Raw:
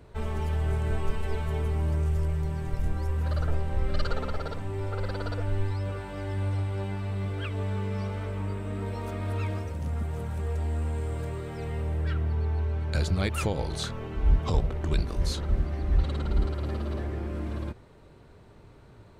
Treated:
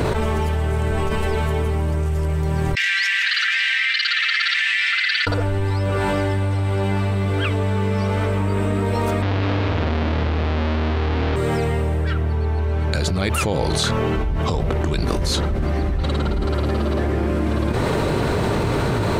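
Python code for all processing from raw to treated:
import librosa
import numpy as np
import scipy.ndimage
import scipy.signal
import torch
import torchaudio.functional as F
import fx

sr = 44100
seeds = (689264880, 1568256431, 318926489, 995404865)

y = fx.chain(x, sr, fx.cheby1_highpass(hz=1800.0, order=5),
    fx.air_absorb(metres=200.0), at=(2.75, 5.27))
y = fx.chain(y, sr, fx.halfwave_hold(),
    fx.lowpass(hz=4000.0, slope=24),
    fx.echo_single(ms=202, db=-3.0), at=(9.22, 11.36))
y = fx.low_shelf(y, sr, hz=63.0, db=-11.5)
y = fx.env_flatten(y, sr, amount_pct=100)
y = F.gain(torch.from_numpy(y), 3.0).numpy()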